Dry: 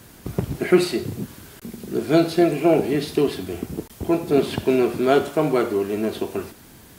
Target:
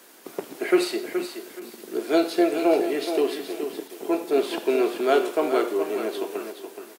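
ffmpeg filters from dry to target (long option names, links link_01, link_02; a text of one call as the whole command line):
ffmpeg -i in.wav -filter_complex "[0:a]highpass=frequency=320:width=0.5412,highpass=frequency=320:width=1.3066,asplit=2[link_01][link_02];[link_02]aecho=0:1:423|846|1269:0.376|0.0902|0.0216[link_03];[link_01][link_03]amix=inputs=2:normalize=0,volume=-2dB" out.wav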